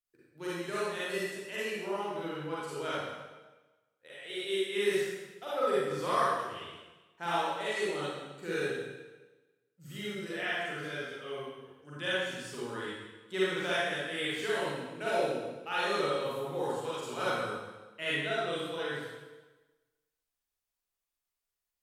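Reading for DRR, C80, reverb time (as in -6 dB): -9.5 dB, -1.0 dB, 1.2 s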